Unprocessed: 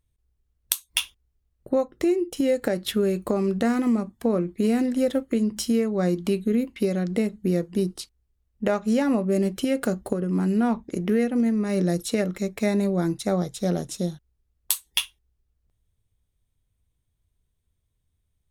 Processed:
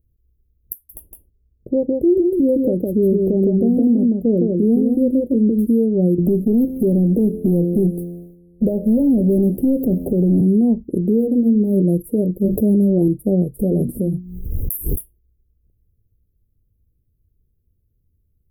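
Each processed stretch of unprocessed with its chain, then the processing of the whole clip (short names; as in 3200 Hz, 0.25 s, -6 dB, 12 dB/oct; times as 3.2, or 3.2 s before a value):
0.73–5.67 high shelf 2200 Hz -9 dB + echo 0.161 s -3.5 dB
6.18–10.41 resonator 87 Hz, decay 1.6 s + sample leveller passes 3 + three-band squash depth 70%
11.09–11.77 de-hum 78.36 Hz, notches 19 + decimation joined by straight lines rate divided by 2×
12.44–13.08 doubler 14 ms -7.5 dB + fast leveller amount 70%
13.59–15.01 notches 60/120/180/240/300/360 Hz + transient shaper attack -1 dB, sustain +8 dB + backwards sustainer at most 51 dB/s
whole clip: inverse Chebyshev band-stop 1100–6800 Hz, stop band 50 dB; maximiser +16.5 dB; gain -7.5 dB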